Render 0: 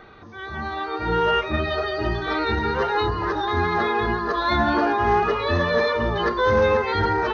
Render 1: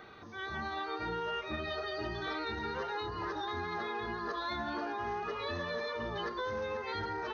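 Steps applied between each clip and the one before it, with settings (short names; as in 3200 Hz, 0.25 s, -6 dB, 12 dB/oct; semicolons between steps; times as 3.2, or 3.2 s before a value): HPF 97 Hz 6 dB/oct; high shelf 4400 Hz +8.5 dB; compressor 10:1, threshold -28 dBFS, peak gain reduction 13.5 dB; gain -6 dB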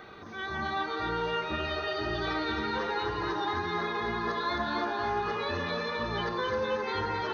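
split-band echo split 990 Hz, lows 87 ms, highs 0.263 s, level -4 dB; gain +4 dB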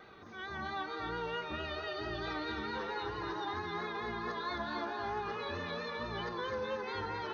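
vibrato 4.5 Hz 41 cents; gain -7 dB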